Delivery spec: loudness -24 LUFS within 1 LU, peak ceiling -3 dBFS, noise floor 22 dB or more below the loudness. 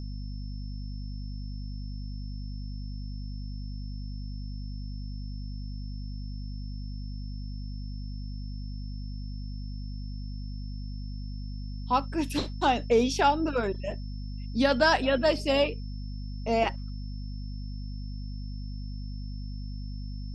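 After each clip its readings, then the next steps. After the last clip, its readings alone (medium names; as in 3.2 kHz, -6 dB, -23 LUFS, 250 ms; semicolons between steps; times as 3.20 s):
hum 50 Hz; highest harmonic 250 Hz; hum level -34 dBFS; steady tone 5.3 kHz; tone level -53 dBFS; loudness -32.0 LUFS; peak level -10.5 dBFS; loudness target -24.0 LUFS
-> hum notches 50/100/150/200/250 Hz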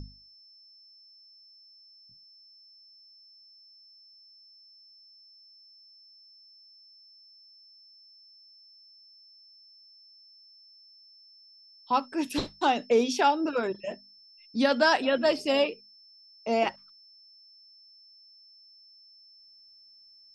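hum not found; steady tone 5.3 kHz; tone level -53 dBFS
-> band-stop 5.3 kHz, Q 30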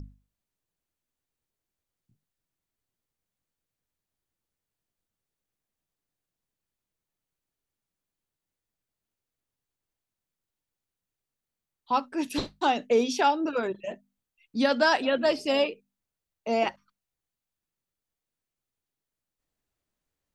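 steady tone not found; loudness -26.5 LUFS; peak level -11.0 dBFS; loudness target -24.0 LUFS
-> trim +2.5 dB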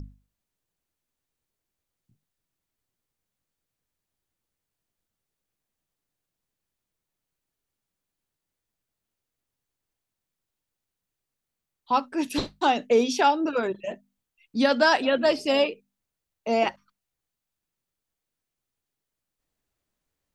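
loudness -24.0 LUFS; peak level -8.5 dBFS; noise floor -86 dBFS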